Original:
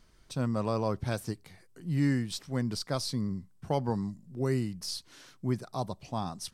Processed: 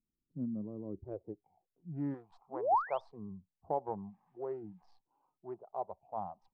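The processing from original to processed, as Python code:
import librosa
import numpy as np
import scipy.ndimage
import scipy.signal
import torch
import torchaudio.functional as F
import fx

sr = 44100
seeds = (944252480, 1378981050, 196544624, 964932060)

y = fx.wiener(x, sr, points=25)
y = fx.spec_paint(y, sr, seeds[0], shape='rise', start_s=2.49, length_s=0.52, low_hz=210.0, high_hz=3800.0, level_db=-30.0)
y = fx.quant_dither(y, sr, seeds[1], bits=10, dither='none', at=(3.85, 4.94))
y = fx.low_shelf(y, sr, hz=140.0, db=-7.0)
y = fx.filter_sweep_lowpass(y, sr, from_hz=260.0, to_hz=810.0, start_s=0.83, end_s=1.52, q=2.4)
y = fx.graphic_eq_10(y, sr, hz=(250, 1000, 8000), db=(-8, 8, 7), at=(2.14, 3.09))
y = fx.noise_reduce_blind(y, sr, reduce_db=17)
y = F.gain(torch.from_numpy(y), -7.5).numpy()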